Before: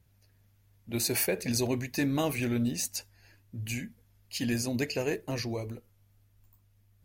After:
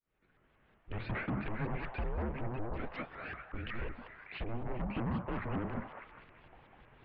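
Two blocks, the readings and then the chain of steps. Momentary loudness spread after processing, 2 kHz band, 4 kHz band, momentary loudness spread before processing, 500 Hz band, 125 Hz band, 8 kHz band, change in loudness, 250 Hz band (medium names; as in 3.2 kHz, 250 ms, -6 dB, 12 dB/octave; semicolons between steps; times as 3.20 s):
15 LU, -5.0 dB, -17.0 dB, 12 LU, -9.0 dB, -4.5 dB, under -40 dB, -8.5 dB, -8.5 dB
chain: fade-in on the opening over 2.11 s; low-pass that closes with the level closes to 500 Hz, closed at -25.5 dBFS; reverse; compression 4:1, threshold -47 dBFS, peak gain reduction 17.5 dB; reverse; peak limiter -42 dBFS, peak gain reduction 5.5 dB; in parallel at -9 dB: sine folder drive 10 dB, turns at -42 dBFS; on the sum: mistuned SSB -240 Hz 240–3500 Hz; distance through air 380 m; repeats whose band climbs or falls 199 ms, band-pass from 850 Hz, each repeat 0.7 oct, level -2 dB; vibrato with a chosen wave saw up 5.4 Hz, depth 250 cents; trim +14.5 dB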